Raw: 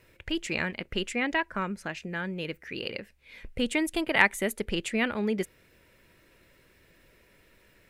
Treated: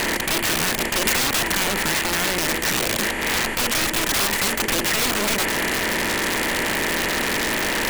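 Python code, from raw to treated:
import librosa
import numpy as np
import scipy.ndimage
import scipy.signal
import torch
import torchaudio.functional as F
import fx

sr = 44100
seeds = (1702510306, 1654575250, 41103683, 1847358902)

y = fx.bin_compress(x, sr, power=0.2)
y = (np.mod(10.0 ** (16.0 / 20.0) * y + 1.0, 2.0) - 1.0) / 10.0 ** (16.0 / 20.0)
y = fx.band_squash(y, sr, depth_pct=100, at=(1.05, 1.64))
y = y * librosa.db_to_amplitude(1.0)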